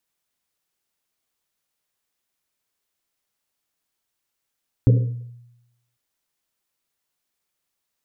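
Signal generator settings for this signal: Risset drum, pitch 120 Hz, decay 0.95 s, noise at 460 Hz, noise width 130 Hz, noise 15%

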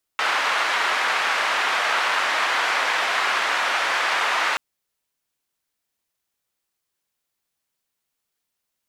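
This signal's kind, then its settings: noise band 940–1700 Hz, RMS -22 dBFS 4.38 s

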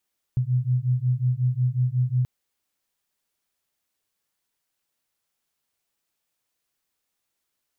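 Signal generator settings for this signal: beating tones 123 Hz, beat 5.5 Hz, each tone -23 dBFS 1.88 s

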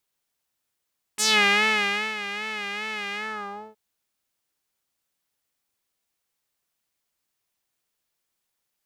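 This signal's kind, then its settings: synth patch with vibrato G#3, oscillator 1 triangle, oscillator 2 saw, interval +12 st, oscillator 2 level -1.5 dB, sub -20.5 dB, filter bandpass, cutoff 570 Hz, Q 2.3, filter envelope 4 oct, filter decay 0.19 s, filter sustain 50%, attack 21 ms, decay 0.94 s, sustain -14.5 dB, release 0.59 s, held 1.98 s, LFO 2.5 Hz, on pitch 73 cents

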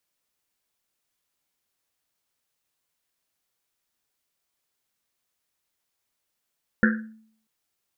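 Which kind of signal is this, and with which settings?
Risset drum length 0.64 s, pitch 220 Hz, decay 0.61 s, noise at 1.6 kHz, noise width 380 Hz, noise 40%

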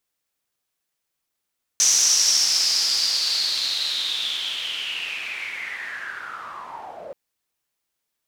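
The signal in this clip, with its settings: swept filtered noise pink, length 5.33 s bandpass, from 6.1 kHz, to 520 Hz, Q 7.8, linear, gain ramp -22 dB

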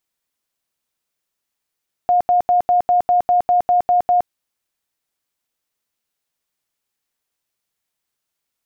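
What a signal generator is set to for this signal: tone bursts 714 Hz, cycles 83, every 0.20 s, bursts 11, -11 dBFS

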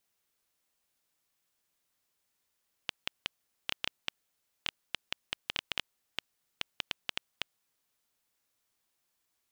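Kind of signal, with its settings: random clicks 5.5 per s -12.5 dBFS 4.72 s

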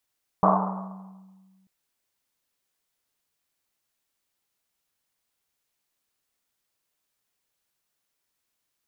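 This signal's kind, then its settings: Risset drum length 1.24 s, pitch 190 Hz, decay 1.91 s, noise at 890 Hz, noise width 570 Hz, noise 60%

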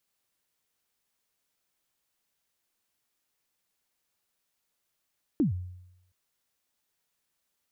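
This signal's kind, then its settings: kick drum length 0.72 s, from 340 Hz, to 90 Hz, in 125 ms, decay 0.85 s, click off, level -19 dB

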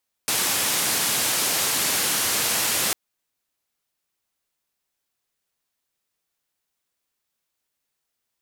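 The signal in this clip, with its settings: noise band 110–13000 Hz, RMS -23 dBFS 2.65 s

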